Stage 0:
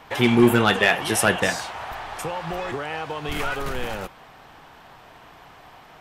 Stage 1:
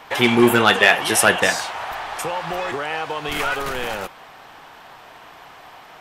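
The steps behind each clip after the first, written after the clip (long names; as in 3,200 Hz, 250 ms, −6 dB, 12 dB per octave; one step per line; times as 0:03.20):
low-shelf EQ 260 Hz −10.5 dB
level +5.5 dB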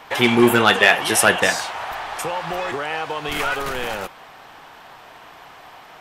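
no processing that can be heard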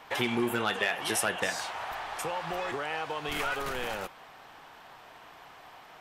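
downward compressor 4 to 1, threshold −18 dBFS, peak gain reduction 9 dB
level −8 dB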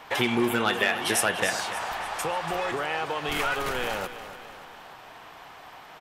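repeating echo 289 ms, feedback 50%, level −13 dB
level +4.5 dB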